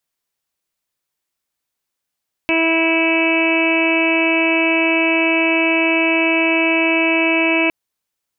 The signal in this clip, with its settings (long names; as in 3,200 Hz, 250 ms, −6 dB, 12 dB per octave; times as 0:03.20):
steady harmonic partials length 5.21 s, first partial 327 Hz, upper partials −4/−8.5/−17/−13.5/−17/−2/−1/−13 dB, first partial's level −17.5 dB